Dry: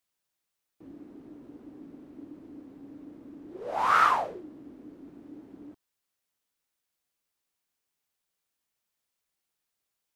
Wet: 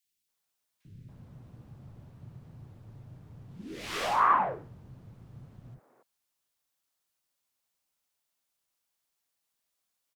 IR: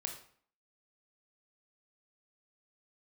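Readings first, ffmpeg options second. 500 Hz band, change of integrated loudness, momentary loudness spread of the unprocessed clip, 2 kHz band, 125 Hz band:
-1.5 dB, -3.0 dB, 20 LU, -4.5 dB, +11.0 dB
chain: -filter_complex "[0:a]highpass=81,afreqshift=-170,lowshelf=f=190:g=-6,acrossover=split=250|960[a][b][c];[b]asoftclip=type=hard:threshold=-35dB[d];[a][d][c]amix=inputs=3:normalize=0,acrossover=split=370|2000[e][f][g];[e]adelay=40[h];[f]adelay=280[i];[h][i][g]amix=inputs=3:normalize=0,volume=2dB"

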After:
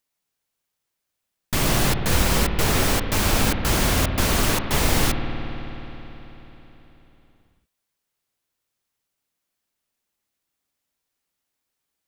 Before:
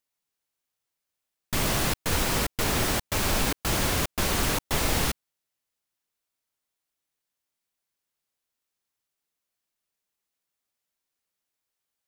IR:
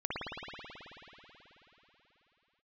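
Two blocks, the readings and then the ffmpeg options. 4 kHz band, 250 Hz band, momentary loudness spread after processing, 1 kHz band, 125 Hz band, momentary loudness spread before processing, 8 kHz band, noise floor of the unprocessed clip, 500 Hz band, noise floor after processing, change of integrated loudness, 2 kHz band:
+4.0 dB, +6.5 dB, 14 LU, +4.5 dB, +7.0 dB, 3 LU, +3.5 dB, -85 dBFS, +5.0 dB, -81 dBFS, +4.5 dB, +4.5 dB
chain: -filter_complex "[0:a]asplit=2[a][b];[1:a]atrim=start_sample=2205,lowshelf=f=340:g=8.5[c];[b][c]afir=irnorm=-1:irlink=0,volume=-13.5dB[d];[a][d]amix=inputs=2:normalize=0,volume=2.5dB"

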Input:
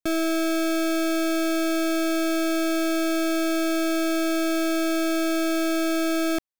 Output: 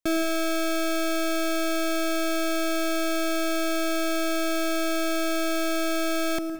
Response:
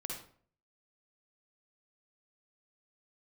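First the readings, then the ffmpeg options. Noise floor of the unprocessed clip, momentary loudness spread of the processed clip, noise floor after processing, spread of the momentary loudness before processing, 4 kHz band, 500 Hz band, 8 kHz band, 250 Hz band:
-23 dBFS, 0 LU, -25 dBFS, 0 LU, +0.5 dB, -1.5 dB, 0.0 dB, -4.5 dB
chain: -filter_complex "[0:a]asplit=2[a][b];[1:a]atrim=start_sample=2205,adelay=112[c];[b][c]afir=irnorm=-1:irlink=0,volume=-11dB[d];[a][d]amix=inputs=2:normalize=0"

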